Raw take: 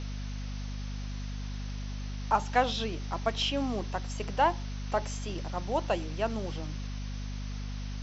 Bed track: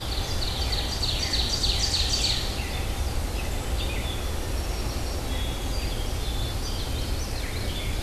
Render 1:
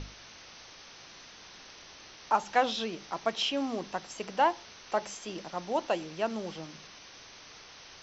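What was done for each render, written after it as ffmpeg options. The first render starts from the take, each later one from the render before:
-af "bandreject=f=50:t=h:w=6,bandreject=f=100:t=h:w=6,bandreject=f=150:t=h:w=6,bandreject=f=200:t=h:w=6,bandreject=f=250:t=h:w=6"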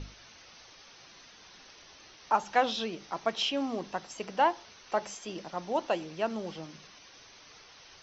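-af "afftdn=nr=6:nf=-51"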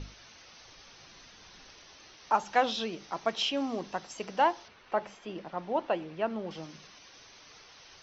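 -filter_complex "[0:a]asettb=1/sr,asplit=3[s0][s1][s2];[s0]atrim=end=0.654[s3];[s1]atrim=start=0.65:end=1.79,asetpts=PTS-STARTPTS,afade=t=in:d=0.004:c=qsin,afade=t=out:st=1.136:d=0.004:c=qsin,lowshelf=f=130:g=9[s4];[s2]atrim=start=1.786[s5];[s3][s4]acrossfade=d=0.004:c1=hsin:c2=qsin[s6];[s6][s5]acrossfade=d=0.004:c1=qsin:c2=hsin,asettb=1/sr,asplit=3[s7][s8][s9];[s7]atrim=end=4.684[s10];[s8]atrim=start=4.68:end=6.51,asetpts=PTS-STARTPTS,afade=t=in:d=0.004:c=qsin,afade=t=out:st=1.826:d=0.004:c=qsin,lowpass=2700[s11];[s9]atrim=start=6.506[s12];[s10][s11]acrossfade=d=0.004:c1=hsin:c2=qsin[s13];[s13][s12]acrossfade=d=0.004:c1=qsin:c2=hsin"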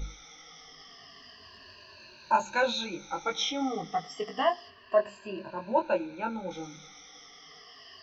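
-af "afftfilt=real='re*pow(10,22/40*sin(2*PI*(1.4*log(max(b,1)*sr/1024/100)/log(2)-(-0.3)*(pts-256)/sr)))':imag='im*pow(10,22/40*sin(2*PI*(1.4*log(max(b,1)*sr/1024/100)/log(2)-(-0.3)*(pts-256)/sr)))':win_size=1024:overlap=0.75,flanger=delay=19:depth=2.9:speed=0.25"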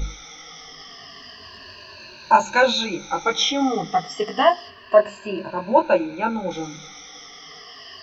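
-af "volume=3.16"

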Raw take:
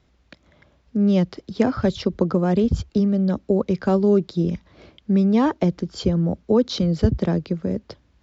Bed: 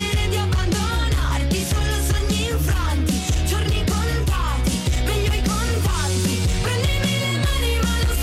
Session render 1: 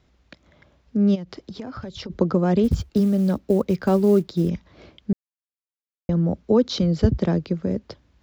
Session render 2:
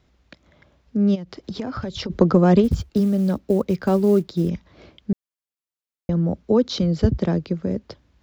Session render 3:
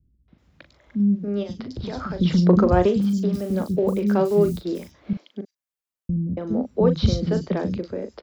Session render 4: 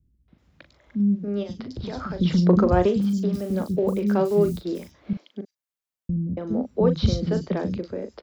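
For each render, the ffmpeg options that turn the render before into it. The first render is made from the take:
-filter_complex "[0:a]asplit=3[s0][s1][s2];[s0]afade=t=out:st=1.14:d=0.02[s3];[s1]acompressor=threshold=0.0316:ratio=10:attack=3.2:release=140:knee=1:detection=peak,afade=t=in:st=1.14:d=0.02,afade=t=out:st=2.09:d=0.02[s4];[s2]afade=t=in:st=2.09:d=0.02[s5];[s3][s4][s5]amix=inputs=3:normalize=0,asplit=3[s6][s7][s8];[s6]afade=t=out:st=2.63:d=0.02[s9];[s7]acrusher=bits=8:mode=log:mix=0:aa=0.000001,afade=t=in:st=2.63:d=0.02,afade=t=out:st=4.48:d=0.02[s10];[s8]afade=t=in:st=4.48:d=0.02[s11];[s9][s10][s11]amix=inputs=3:normalize=0,asplit=3[s12][s13][s14];[s12]atrim=end=5.13,asetpts=PTS-STARTPTS,afade=t=out:st=5.126:d=0.004:c=hsin[s15];[s13]atrim=start=5.13:end=6.09,asetpts=PTS-STARTPTS,volume=0[s16];[s14]atrim=start=6.09,asetpts=PTS-STARTPTS,afade=t=in:d=0.004:c=hsin[s17];[s15][s16][s17]concat=n=3:v=0:a=1"
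-filter_complex "[0:a]asplit=3[s0][s1][s2];[s0]afade=t=out:st=1.43:d=0.02[s3];[s1]acontrast=37,afade=t=in:st=1.43:d=0.02,afade=t=out:st=2.6:d=0.02[s4];[s2]afade=t=in:st=2.6:d=0.02[s5];[s3][s4][s5]amix=inputs=3:normalize=0"
-filter_complex "[0:a]asplit=2[s0][s1];[s1]adelay=39,volume=0.355[s2];[s0][s2]amix=inputs=2:normalize=0,acrossover=split=260|4200[s3][s4][s5];[s4]adelay=280[s6];[s5]adelay=380[s7];[s3][s6][s7]amix=inputs=3:normalize=0"
-af "volume=0.841"

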